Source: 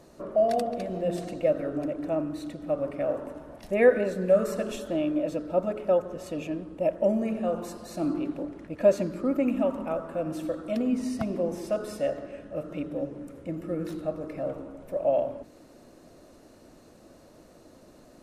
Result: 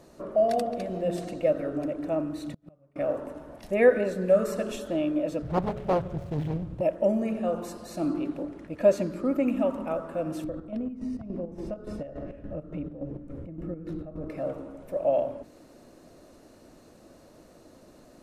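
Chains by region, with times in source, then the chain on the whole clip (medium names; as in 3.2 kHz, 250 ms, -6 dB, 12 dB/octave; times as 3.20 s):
2.48–2.96 s: peaking EQ 140 Hz +14 dB 0.56 oct + inverted gate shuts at -27 dBFS, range -33 dB
5.42–6.81 s: median filter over 25 samples + resonant low shelf 190 Hz +12 dB, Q 3 + loudspeaker Doppler distortion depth 0.86 ms
10.44–14.30 s: RIAA curve playback + compression 3:1, threshold -32 dBFS + square tremolo 3.5 Hz, depth 60%, duty 55%
whole clip: none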